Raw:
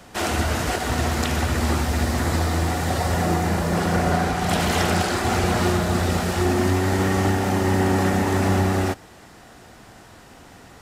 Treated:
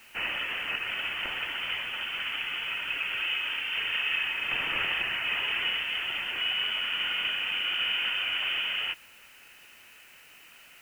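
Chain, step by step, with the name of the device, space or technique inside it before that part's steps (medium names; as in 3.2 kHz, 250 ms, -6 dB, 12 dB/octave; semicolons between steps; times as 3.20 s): scrambled radio voice (band-pass 330–2700 Hz; frequency inversion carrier 3.3 kHz; white noise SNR 27 dB); trim -5.5 dB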